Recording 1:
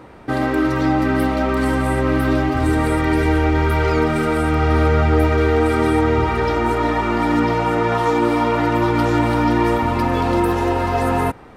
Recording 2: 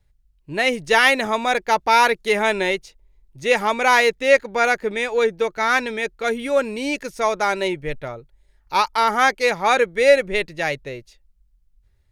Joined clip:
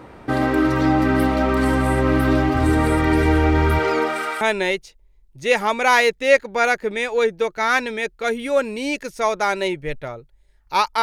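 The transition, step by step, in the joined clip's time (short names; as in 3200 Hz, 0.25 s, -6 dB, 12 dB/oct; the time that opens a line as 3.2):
recording 1
3.78–4.41 HPF 200 Hz -> 1300 Hz
4.41 switch to recording 2 from 2.41 s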